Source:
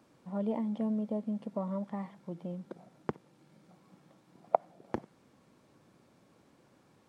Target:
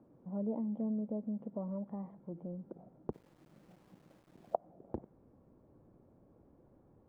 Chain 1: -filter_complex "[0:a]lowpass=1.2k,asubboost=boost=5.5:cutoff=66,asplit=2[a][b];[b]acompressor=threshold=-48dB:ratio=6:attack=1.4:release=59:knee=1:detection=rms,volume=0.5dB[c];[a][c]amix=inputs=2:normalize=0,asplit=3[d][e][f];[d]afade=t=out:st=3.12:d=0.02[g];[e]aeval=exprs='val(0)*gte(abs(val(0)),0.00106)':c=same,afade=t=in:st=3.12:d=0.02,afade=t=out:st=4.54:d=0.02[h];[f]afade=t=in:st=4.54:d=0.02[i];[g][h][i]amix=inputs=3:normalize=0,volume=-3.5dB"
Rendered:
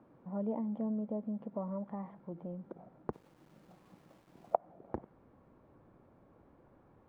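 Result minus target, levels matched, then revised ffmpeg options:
1000 Hz band +4.5 dB
-filter_complex "[0:a]lowpass=590,asubboost=boost=5.5:cutoff=66,asplit=2[a][b];[b]acompressor=threshold=-48dB:ratio=6:attack=1.4:release=59:knee=1:detection=rms,volume=0.5dB[c];[a][c]amix=inputs=2:normalize=0,asplit=3[d][e][f];[d]afade=t=out:st=3.12:d=0.02[g];[e]aeval=exprs='val(0)*gte(abs(val(0)),0.00106)':c=same,afade=t=in:st=3.12:d=0.02,afade=t=out:st=4.54:d=0.02[h];[f]afade=t=in:st=4.54:d=0.02[i];[g][h][i]amix=inputs=3:normalize=0,volume=-3.5dB"

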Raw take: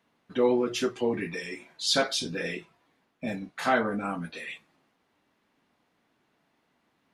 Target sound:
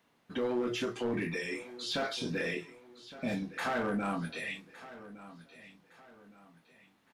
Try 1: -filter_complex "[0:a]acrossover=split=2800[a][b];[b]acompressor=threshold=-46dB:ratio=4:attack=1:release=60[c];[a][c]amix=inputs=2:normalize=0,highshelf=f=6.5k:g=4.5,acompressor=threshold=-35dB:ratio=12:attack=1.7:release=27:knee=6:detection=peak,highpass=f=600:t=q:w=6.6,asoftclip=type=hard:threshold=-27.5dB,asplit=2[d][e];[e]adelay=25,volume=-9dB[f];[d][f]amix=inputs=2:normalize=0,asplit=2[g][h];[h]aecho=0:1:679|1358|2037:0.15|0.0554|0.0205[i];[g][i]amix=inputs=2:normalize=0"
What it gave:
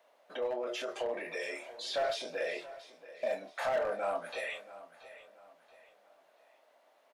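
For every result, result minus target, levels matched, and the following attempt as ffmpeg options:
echo 0.484 s early; compressor: peak gain reduction +7 dB; 500 Hz band +3.5 dB
-filter_complex "[0:a]acrossover=split=2800[a][b];[b]acompressor=threshold=-46dB:ratio=4:attack=1:release=60[c];[a][c]amix=inputs=2:normalize=0,highshelf=f=6.5k:g=4.5,acompressor=threshold=-35dB:ratio=12:attack=1.7:release=27:knee=6:detection=peak,highpass=f=600:t=q:w=6.6,asoftclip=type=hard:threshold=-27.5dB,asplit=2[d][e];[e]adelay=25,volume=-9dB[f];[d][f]amix=inputs=2:normalize=0,asplit=2[g][h];[h]aecho=0:1:1163|2326|3489:0.15|0.0554|0.0205[i];[g][i]amix=inputs=2:normalize=0"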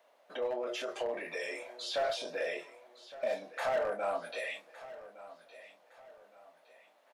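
compressor: peak gain reduction +7 dB; 500 Hz band +3.5 dB
-filter_complex "[0:a]acrossover=split=2800[a][b];[b]acompressor=threshold=-46dB:ratio=4:attack=1:release=60[c];[a][c]amix=inputs=2:normalize=0,highshelf=f=6.5k:g=4.5,acompressor=threshold=-27.5dB:ratio=12:attack=1.7:release=27:knee=6:detection=peak,highpass=f=600:t=q:w=6.6,asoftclip=type=hard:threshold=-27.5dB,asplit=2[d][e];[e]adelay=25,volume=-9dB[f];[d][f]amix=inputs=2:normalize=0,asplit=2[g][h];[h]aecho=0:1:1163|2326|3489:0.15|0.0554|0.0205[i];[g][i]amix=inputs=2:normalize=0"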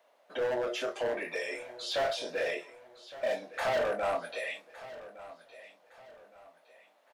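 500 Hz band +3.5 dB
-filter_complex "[0:a]acrossover=split=2800[a][b];[b]acompressor=threshold=-46dB:ratio=4:attack=1:release=60[c];[a][c]amix=inputs=2:normalize=0,highshelf=f=6.5k:g=4.5,acompressor=threshold=-27.5dB:ratio=12:attack=1.7:release=27:knee=6:detection=peak,asoftclip=type=hard:threshold=-27.5dB,asplit=2[d][e];[e]adelay=25,volume=-9dB[f];[d][f]amix=inputs=2:normalize=0,asplit=2[g][h];[h]aecho=0:1:1163|2326|3489:0.15|0.0554|0.0205[i];[g][i]amix=inputs=2:normalize=0"

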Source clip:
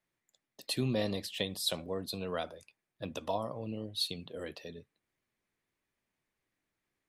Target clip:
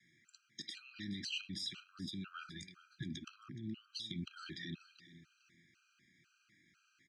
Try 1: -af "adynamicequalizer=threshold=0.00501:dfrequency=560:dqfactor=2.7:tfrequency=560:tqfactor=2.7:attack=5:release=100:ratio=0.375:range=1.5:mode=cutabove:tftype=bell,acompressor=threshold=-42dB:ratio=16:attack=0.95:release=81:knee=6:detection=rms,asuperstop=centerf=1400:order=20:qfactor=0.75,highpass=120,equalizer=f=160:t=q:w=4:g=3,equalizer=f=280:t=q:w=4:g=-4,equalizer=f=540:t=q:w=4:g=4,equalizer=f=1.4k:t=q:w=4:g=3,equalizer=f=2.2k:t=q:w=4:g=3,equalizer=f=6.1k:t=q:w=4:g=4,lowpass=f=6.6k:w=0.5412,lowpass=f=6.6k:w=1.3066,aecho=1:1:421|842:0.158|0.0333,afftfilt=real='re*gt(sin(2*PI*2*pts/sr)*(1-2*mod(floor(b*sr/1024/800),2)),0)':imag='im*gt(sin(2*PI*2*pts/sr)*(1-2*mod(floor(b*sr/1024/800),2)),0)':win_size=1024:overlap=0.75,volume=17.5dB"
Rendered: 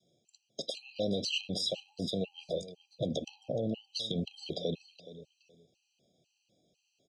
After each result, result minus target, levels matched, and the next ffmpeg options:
500 Hz band +16.5 dB; compressor: peak gain reduction -8.5 dB
-af "adynamicequalizer=threshold=0.00501:dfrequency=560:dqfactor=2.7:tfrequency=560:tqfactor=2.7:attack=5:release=100:ratio=0.375:range=1.5:mode=cutabove:tftype=bell,acompressor=threshold=-42dB:ratio=16:attack=0.95:release=81:knee=6:detection=rms,asuperstop=centerf=670:order=20:qfactor=0.75,highpass=120,equalizer=f=160:t=q:w=4:g=3,equalizer=f=280:t=q:w=4:g=-4,equalizer=f=540:t=q:w=4:g=4,equalizer=f=1.4k:t=q:w=4:g=3,equalizer=f=2.2k:t=q:w=4:g=3,equalizer=f=6.1k:t=q:w=4:g=4,lowpass=f=6.6k:w=0.5412,lowpass=f=6.6k:w=1.3066,aecho=1:1:421|842:0.158|0.0333,afftfilt=real='re*gt(sin(2*PI*2*pts/sr)*(1-2*mod(floor(b*sr/1024/800),2)),0)':imag='im*gt(sin(2*PI*2*pts/sr)*(1-2*mod(floor(b*sr/1024/800),2)),0)':win_size=1024:overlap=0.75,volume=17.5dB"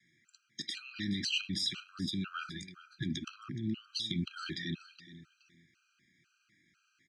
compressor: peak gain reduction -8.5 dB
-af "adynamicequalizer=threshold=0.00501:dfrequency=560:dqfactor=2.7:tfrequency=560:tqfactor=2.7:attack=5:release=100:ratio=0.375:range=1.5:mode=cutabove:tftype=bell,acompressor=threshold=-51dB:ratio=16:attack=0.95:release=81:knee=6:detection=rms,asuperstop=centerf=670:order=20:qfactor=0.75,highpass=120,equalizer=f=160:t=q:w=4:g=3,equalizer=f=280:t=q:w=4:g=-4,equalizer=f=540:t=q:w=4:g=4,equalizer=f=1.4k:t=q:w=4:g=3,equalizer=f=2.2k:t=q:w=4:g=3,equalizer=f=6.1k:t=q:w=4:g=4,lowpass=f=6.6k:w=0.5412,lowpass=f=6.6k:w=1.3066,aecho=1:1:421|842:0.158|0.0333,afftfilt=real='re*gt(sin(2*PI*2*pts/sr)*(1-2*mod(floor(b*sr/1024/800),2)),0)':imag='im*gt(sin(2*PI*2*pts/sr)*(1-2*mod(floor(b*sr/1024/800),2)),0)':win_size=1024:overlap=0.75,volume=17.5dB"

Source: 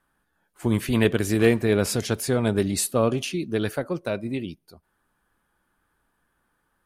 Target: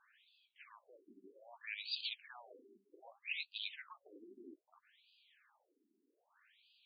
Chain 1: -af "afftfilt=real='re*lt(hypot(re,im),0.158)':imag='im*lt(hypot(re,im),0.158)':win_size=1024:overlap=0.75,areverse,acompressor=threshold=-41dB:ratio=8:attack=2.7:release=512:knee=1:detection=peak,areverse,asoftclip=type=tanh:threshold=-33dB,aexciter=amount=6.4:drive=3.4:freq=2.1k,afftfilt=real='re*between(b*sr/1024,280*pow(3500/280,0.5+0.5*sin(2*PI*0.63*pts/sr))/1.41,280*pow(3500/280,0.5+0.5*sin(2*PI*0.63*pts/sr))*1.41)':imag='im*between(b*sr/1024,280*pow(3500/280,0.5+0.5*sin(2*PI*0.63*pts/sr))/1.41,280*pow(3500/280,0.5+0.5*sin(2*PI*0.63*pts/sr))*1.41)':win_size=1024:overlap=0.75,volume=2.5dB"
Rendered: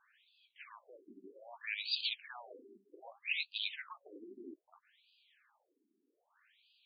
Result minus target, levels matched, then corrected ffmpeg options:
compressor: peak gain reduction -5.5 dB
-af "afftfilt=real='re*lt(hypot(re,im),0.158)':imag='im*lt(hypot(re,im),0.158)':win_size=1024:overlap=0.75,areverse,acompressor=threshold=-47.5dB:ratio=8:attack=2.7:release=512:knee=1:detection=peak,areverse,asoftclip=type=tanh:threshold=-33dB,aexciter=amount=6.4:drive=3.4:freq=2.1k,afftfilt=real='re*between(b*sr/1024,280*pow(3500/280,0.5+0.5*sin(2*PI*0.63*pts/sr))/1.41,280*pow(3500/280,0.5+0.5*sin(2*PI*0.63*pts/sr))*1.41)':imag='im*between(b*sr/1024,280*pow(3500/280,0.5+0.5*sin(2*PI*0.63*pts/sr))/1.41,280*pow(3500/280,0.5+0.5*sin(2*PI*0.63*pts/sr))*1.41)':win_size=1024:overlap=0.75,volume=2.5dB"

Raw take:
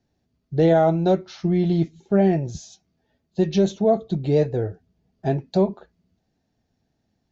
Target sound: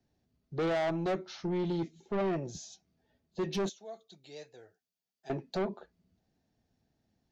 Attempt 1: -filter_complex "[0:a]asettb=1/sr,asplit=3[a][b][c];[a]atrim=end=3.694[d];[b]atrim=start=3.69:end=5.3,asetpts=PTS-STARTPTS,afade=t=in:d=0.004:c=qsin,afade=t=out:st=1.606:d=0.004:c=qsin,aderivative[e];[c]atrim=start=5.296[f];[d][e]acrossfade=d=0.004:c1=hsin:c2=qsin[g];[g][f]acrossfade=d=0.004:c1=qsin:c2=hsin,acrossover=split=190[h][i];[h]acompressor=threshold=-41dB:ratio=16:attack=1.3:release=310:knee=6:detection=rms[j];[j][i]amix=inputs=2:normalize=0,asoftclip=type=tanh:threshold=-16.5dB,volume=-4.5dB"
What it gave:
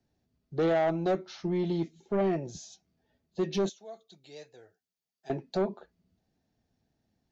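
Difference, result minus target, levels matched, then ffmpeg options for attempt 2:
soft clip: distortion -6 dB
-filter_complex "[0:a]asettb=1/sr,asplit=3[a][b][c];[a]atrim=end=3.694[d];[b]atrim=start=3.69:end=5.3,asetpts=PTS-STARTPTS,afade=t=in:d=0.004:c=qsin,afade=t=out:st=1.606:d=0.004:c=qsin,aderivative[e];[c]atrim=start=5.296[f];[d][e]acrossfade=d=0.004:c1=hsin:c2=qsin[g];[g][f]acrossfade=d=0.004:c1=qsin:c2=hsin,acrossover=split=190[h][i];[h]acompressor=threshold=-41dB:ratio=16:attack=1.3:release=310:knee=6:detection=rms[j];[j][i]amix=inputs=2:normalize=0,asoftclip=type=tanh:threshold=-23dB,volume=-4.5dB"

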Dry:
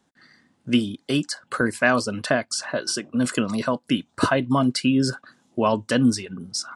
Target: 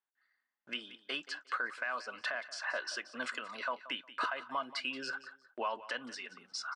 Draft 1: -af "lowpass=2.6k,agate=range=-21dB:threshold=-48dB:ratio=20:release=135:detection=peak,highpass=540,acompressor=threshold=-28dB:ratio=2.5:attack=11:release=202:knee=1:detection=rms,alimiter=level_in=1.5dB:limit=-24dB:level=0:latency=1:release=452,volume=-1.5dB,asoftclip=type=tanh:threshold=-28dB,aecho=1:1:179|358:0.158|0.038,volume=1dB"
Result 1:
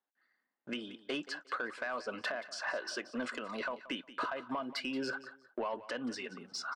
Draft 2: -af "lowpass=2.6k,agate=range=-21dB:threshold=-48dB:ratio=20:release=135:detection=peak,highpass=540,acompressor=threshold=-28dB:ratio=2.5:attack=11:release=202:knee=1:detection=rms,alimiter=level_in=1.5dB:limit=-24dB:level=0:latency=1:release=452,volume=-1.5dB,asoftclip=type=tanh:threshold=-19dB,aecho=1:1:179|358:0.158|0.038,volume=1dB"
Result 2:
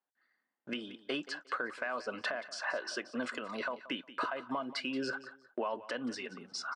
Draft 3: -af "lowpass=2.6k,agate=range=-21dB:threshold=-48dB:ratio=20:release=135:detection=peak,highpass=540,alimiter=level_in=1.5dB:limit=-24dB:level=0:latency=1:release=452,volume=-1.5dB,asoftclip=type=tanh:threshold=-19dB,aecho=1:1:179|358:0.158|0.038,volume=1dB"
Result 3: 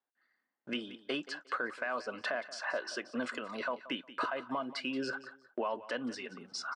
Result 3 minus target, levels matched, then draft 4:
500 Hz band +5.0 dB
-af "lowpass=2.6k,agate=range=-21dB:threshold=-48dB:ratio=20:release=135:detection=peak,highpass=1.1k,alimiter=level_in=1.5dB:limit=-24dB:level=0:latency=1:release=452,volume=-1.5dB,asoftclip=type=tanh:threshold=-19dB,aecho=1:1:179|358:0.158|0.038,volume=1dB"

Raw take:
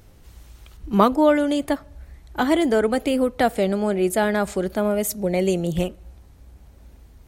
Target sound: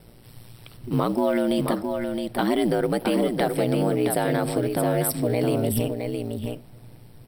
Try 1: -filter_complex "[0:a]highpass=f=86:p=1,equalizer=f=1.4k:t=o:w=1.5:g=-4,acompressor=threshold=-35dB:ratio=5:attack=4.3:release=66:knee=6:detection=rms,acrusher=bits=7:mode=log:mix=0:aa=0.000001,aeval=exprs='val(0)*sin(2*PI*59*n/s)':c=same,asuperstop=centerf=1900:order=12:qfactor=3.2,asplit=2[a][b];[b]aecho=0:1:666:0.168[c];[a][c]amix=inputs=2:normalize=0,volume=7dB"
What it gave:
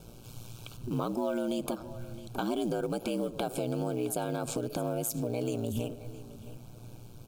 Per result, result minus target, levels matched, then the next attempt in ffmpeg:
compressor: peak gain reduction +9 dB; echo-to-direct -10 dB; 2000 Hz band -3.0 dB
-filter_complex "[0:a]highpass=f=86:p=1,equalizer=f=1.4k:t=o:w=1.5:g=-4,acompressor=threshold=-23.5dB:ratio=5:attack=4.3:release=66:knee=6:detection=rms,acrusher=bits=7:mode=log:mix=0:aa=0.000001,aeval=exprs='val(0)*sin(2*PI*59*n/s)':c=same,asuperstop=centerf=1900:order=12:qfactor=3.2,asplit=2[a][b];[b]aecho=0:1:666:0.168[c];[a][c]amix=inputs=2:normalize=0,volume=7dB"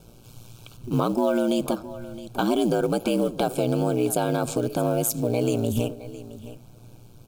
echo-to-direct -10 dB; 2000 Hz band -3.5 dB
-filter_complex "[0:a]highpass=f=86:p=1,equalizer=f=1.4k:t=o:w=1.5:g=-4,acompressor=threshold=-23.5dB:ratio=5:attack=4.3:release=66:knee=6:detection=rms,acrusher=bits=7:mode=log:mix=0:aa=0.000001,aeval=exprs='val(0)*sin(2*PI*59*n/s)':c=same,asuperstop=centerf=1900:order=12:qfactor=3.2,asplit=2[a][b];[b]aecho=0:1:666:0.531[c];[a][c]amix=inputs=2:normalize=0,volume=7dB"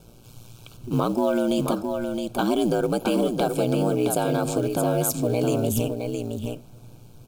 2000 Hz band -3.0 dB
-filter_complex "[0:a]highpass=f=86:p=1,equalizer=f=1.4k:t=o:w=1.5:g=-4,acompressor=threshold=-23.5dB:ratio=5:attack=4.3:release=66:knee=6:detection=rms,acrusher=bits=7:mode=log:mix=0:aa=0.000001,aeval=exprs='val(0)*sin(2*PI*59*n/s)':c=same,asuperstop=centerf=6700:order=12:qfactor=3.2,asplit=2[a][b];[b]aecho=0:1:666:0.531[c];[a][c]amix=inputs=2:normalize=0,volume=7dB"

